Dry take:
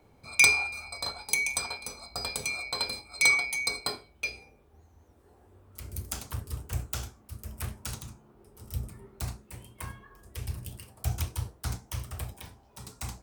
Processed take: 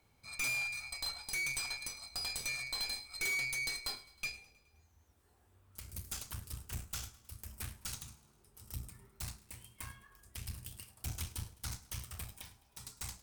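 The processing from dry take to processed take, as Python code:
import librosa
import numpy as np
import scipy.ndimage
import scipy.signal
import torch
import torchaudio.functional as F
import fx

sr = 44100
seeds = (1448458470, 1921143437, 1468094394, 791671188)

y = fx.tone_stack(x, sr, knobs='5-5-5')
y = fx.tube_stage(y, sr, drive_db=42.0, bias=0.65)
y = fx.echo_feedback(y, sr, ms=105, feedback_pct=58, wet_db=-20.0)
y = y * librosa.db_to_amplitude(8.5)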